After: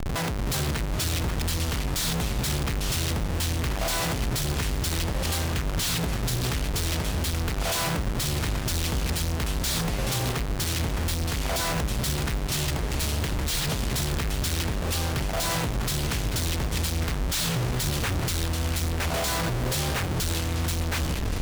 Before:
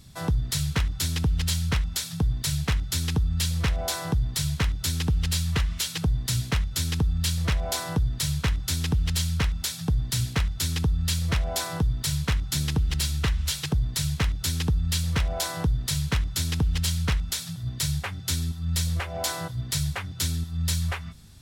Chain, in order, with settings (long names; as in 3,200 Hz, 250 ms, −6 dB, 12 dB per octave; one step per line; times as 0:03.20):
comparator with hysteresis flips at −45.5 dBFS
delay with pitch and tempo change per echo 341 ms, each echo −4 semitones, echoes 3, each echo −6 dB
level −2 dB